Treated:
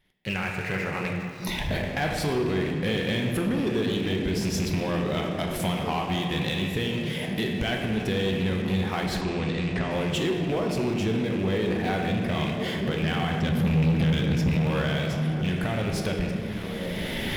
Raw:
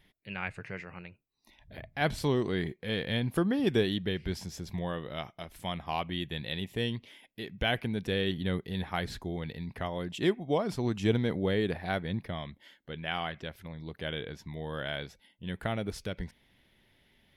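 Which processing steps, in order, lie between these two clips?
loose part that buzzes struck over −38 dBFS, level −34 dBFS
camcorder AGC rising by 19 dB per second
echo through a band-pass that steps 692 ms, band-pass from 190 Hz, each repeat 0.7 octaves, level −10.5 dB
downward compressor 3 to 1, threshold −39 dBFS, peak gain reduction 14 dB
0:13.03–0:14.49: low shelf with overshoot 280 Hz +9 dB, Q 1.5
on a send at −1 dB: high-pass filter 88 Hz 6 dB per octave + convolution reverb RT60 2.6 s, pre-delay 5 ms
on the sum: leveller curve on the samples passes 3
0:09.21–0:09.91: elliptic low-pass filter 8,600 Hz, stop band 40 dB

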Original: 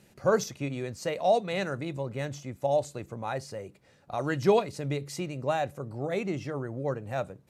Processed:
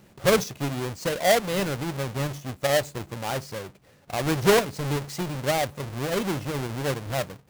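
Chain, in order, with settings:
each half-wave held at its own peak

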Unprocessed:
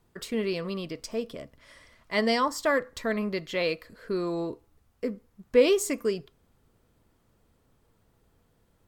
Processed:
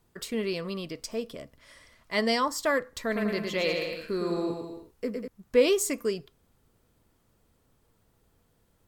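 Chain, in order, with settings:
high-shelf EQ 4,400 Hz +5 dB
0:03.01–0:05.28: bouncing-ball delay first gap 110 ms, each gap 0.8×, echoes 5
level −1.5 dB

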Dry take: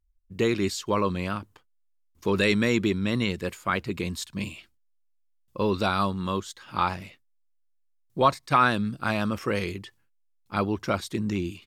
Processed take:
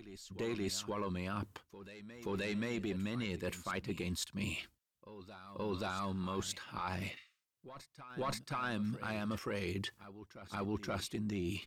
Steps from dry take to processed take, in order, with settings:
tube saturation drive 11 dB, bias 0.45
brickwall limiter −22 dBFS, peak gain reduction 10.5 dB
reversed playback
downward compressor 4 to 1, threshold −44 dBFS, peak gain reduction 15 dB
reversed playback
healed spectral selection 0:07.19–0:07.45, 1,100–9,600 Hz both
backwards echo 527 ms −14 dB
level +6 dB

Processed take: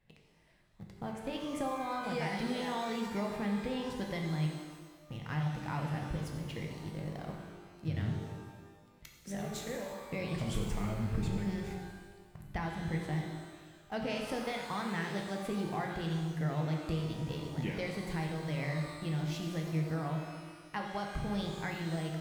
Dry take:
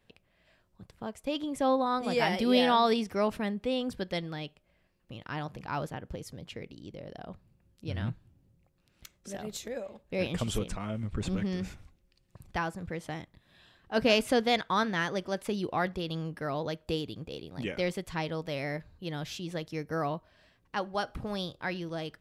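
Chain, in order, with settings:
in parallel at −4.5 dB: centre clipping without the shift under −42 dBFS
on the sum: thirty-one-band graphic EQ 160 Hz +10 dB, 800 Hz +5 dB, 2,000 Hz +7 dB
downward compressor 6 to 1, threshold −28 dBFS, peak gain reduction 13.5 dB
low-shelf EQ 140 Hz +8 dB
reverb with rising layers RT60 1.4 s, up +12 semitones, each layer −8 dB, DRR 1 dB
level −8.5 dB

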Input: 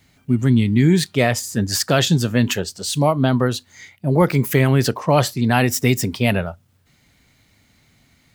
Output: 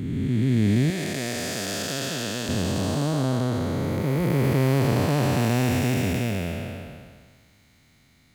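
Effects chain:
spectrum smeared in time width 873 ms
0:00.90–0:02.49: high-pass filter 450 Hz 6 dB per octave

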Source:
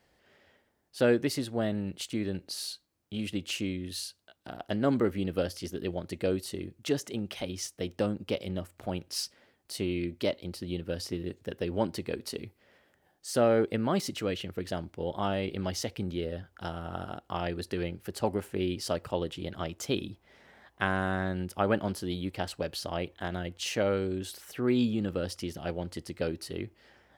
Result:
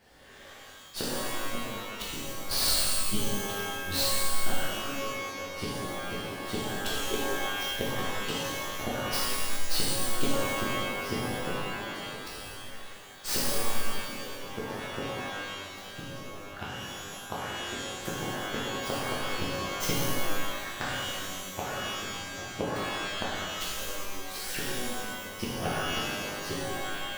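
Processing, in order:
stylus tracing distortion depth 0.21 ms
gate with flip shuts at −26 dBFS, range −28 dB
reverb with rising layers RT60 1.6 s, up +12 semitones, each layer −2 dB, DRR −8 dB
level +4.5 dB

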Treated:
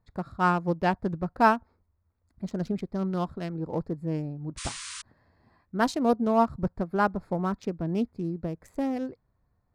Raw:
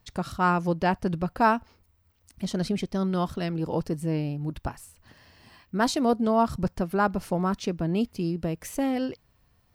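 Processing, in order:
adaptive Wiener filter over 15 samples
sound drawn into the spectrogram noise, 0:04.57–0:05.02, 970–9,800 Hz −33 dBFS
expander for the loud parts 1.5 to 1, over −33 dBFS
level +1.5 dB

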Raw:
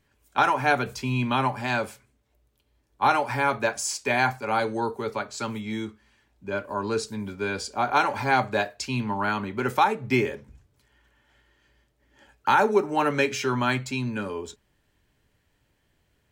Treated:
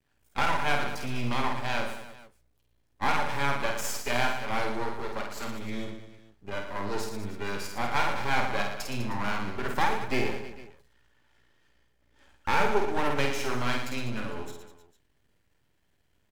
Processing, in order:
half-wave rectification
reverse bouncing-ball delay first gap 50 ms, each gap 1.3×, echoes 5
level −2.5 dB

